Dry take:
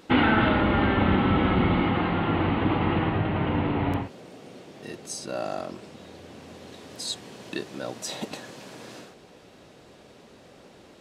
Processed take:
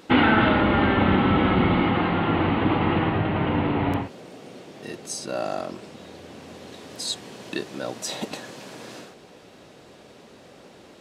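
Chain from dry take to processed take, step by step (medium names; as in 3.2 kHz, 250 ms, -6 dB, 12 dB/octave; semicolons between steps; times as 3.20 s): bass shelf 72 Hz -7 dB; trim +3 dB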